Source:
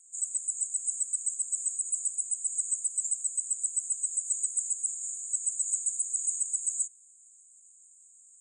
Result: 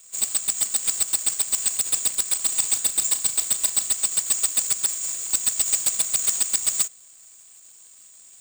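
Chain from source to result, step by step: square wave that keeps the level; 2.31–3.88 s: flutter echo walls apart 6.2 m, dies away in 0.2 s; trim +5.5 dB

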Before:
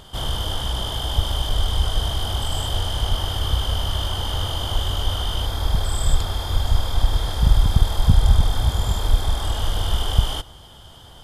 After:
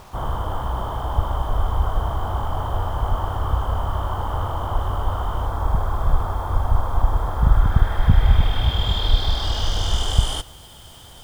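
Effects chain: low-pass sweep 1.1 kHz -> 9 kHz, 7.29–10.37 s; bit crusher 8-bit

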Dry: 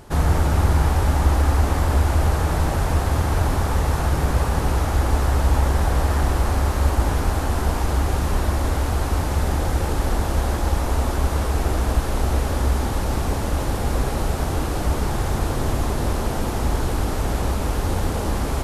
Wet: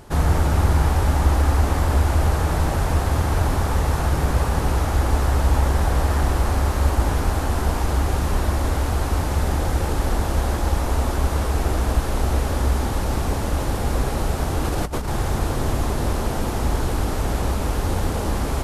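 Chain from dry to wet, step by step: 14.64–15.08 s: compressor with a negative ratio -23 dBFS, ratio -0.5

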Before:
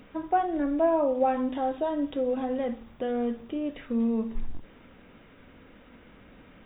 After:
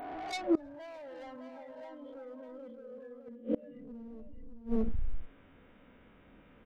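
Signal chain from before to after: reverse spectral sustain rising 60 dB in 1.71 s; treble shelf 3.2 kHz -6 dB; hum notches 60/120/180/240/300/360/420/480 Hz; saturation -28 dBFS, distortion -8 dB; spectral noise reduction 20 dB; hard clipper -29 dBFS, distortion -22 dB; multi-tap echo 241/317/613 ms -17/-19.5/-7 dB; inverted gate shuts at -29 dBFS, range -25 dB; trim +10 dB

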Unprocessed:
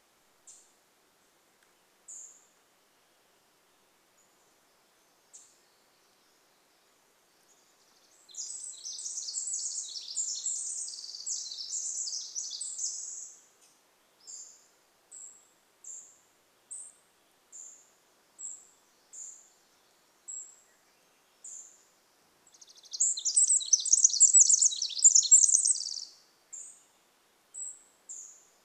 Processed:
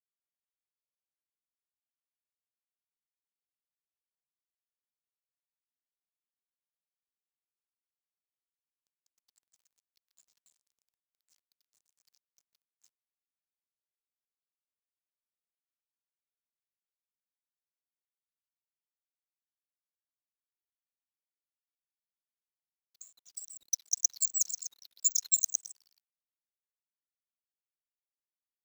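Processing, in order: fifteen-band graphic EQ 250 Hz -8 dB, 630 Hz -12 dB, 1.6 kHz -4 dB, 4 kHz +7 dB; power-law waveshaper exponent 3; frequency shift -84 Hz; bit crusher 11-bit

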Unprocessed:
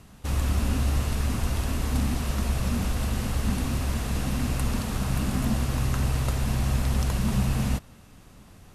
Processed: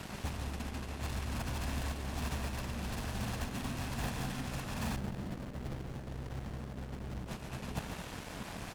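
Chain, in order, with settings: low-pass 3.9 kHz 6 dB/octave; bass shelf 81 Hz -11 dB; comb 1.2 ms, depth 32%; compressor with a negative ratio -35 dBFS, ratio -0.5; saturation -34.5 dBFS, distortion -10 dB; Chebyshev shaper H 3 -14 dB, 7 -14 dB, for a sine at -34.5 dBFS; loudspeakers at several distances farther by 49 m -8 dB, 79 m -10 dB; 4.96–7.28 s: sliding maximum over 33 samples; trim +2.5 dB

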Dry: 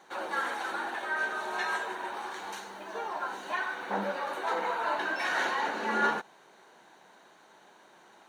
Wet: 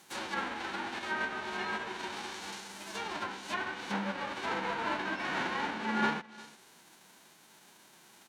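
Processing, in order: formants flattened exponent 0.3; delay 354 ms -22 dB; low-pass that closes with the level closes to 2.3 kHz, closed at -29.5 dBFS; trim -1 dB

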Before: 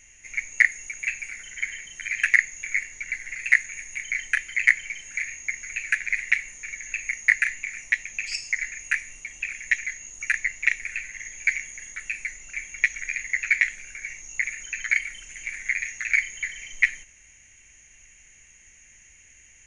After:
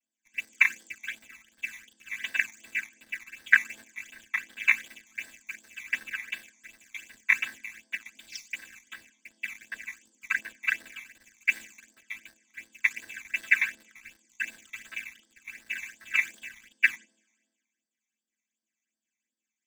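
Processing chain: vocoder on a held chord minor triad, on A3; in parallel at -4 dB: bit crusher 6-bit; on the sum: phase shifter stages 12, 2.7 Hz, lowest notch 490–2400 Hz; three bands expanded up and down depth 70%; trim -8 dB

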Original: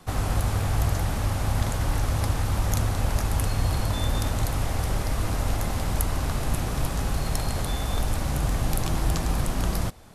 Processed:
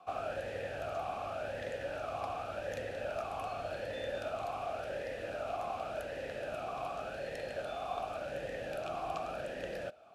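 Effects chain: talking filter a-e 0.88 Hz; trim +4.5 dB

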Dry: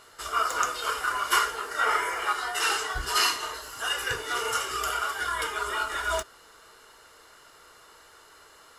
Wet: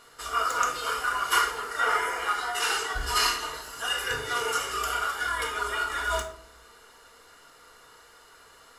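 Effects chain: simulated room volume 990 m³, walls furnished, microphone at 1.8 m; trim -2 dB

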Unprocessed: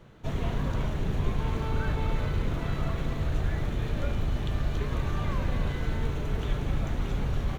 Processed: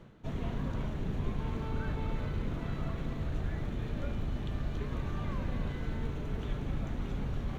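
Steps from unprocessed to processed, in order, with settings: peaking EQ 230 Hz +5 dB 1 oct; reverse; upward compressor, threshold -30 dBFS; reverse; treble shelf 5.7 kHz -5 dB; trim -7 dB

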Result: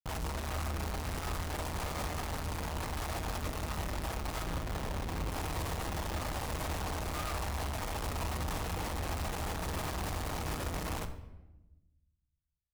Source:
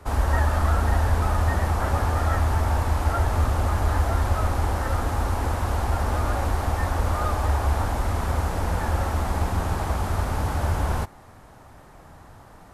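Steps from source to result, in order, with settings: pre-emphasis filter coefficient 0.8; FFT band-reject 1.3–3.7 kHz; 4.45–5.30 s: treble shelf 8.3 kHz -10 dB; Schmitt trigger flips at -42 dBFS; simulated room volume 450 m³, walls mixed, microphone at 0.55 m

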